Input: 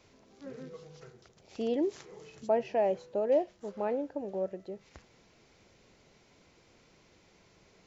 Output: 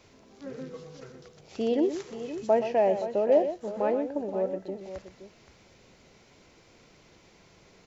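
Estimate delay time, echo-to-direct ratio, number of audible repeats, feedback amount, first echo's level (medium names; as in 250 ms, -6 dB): 123 ms, -7.5 dB, 2, no regular repeats, -10.0 dB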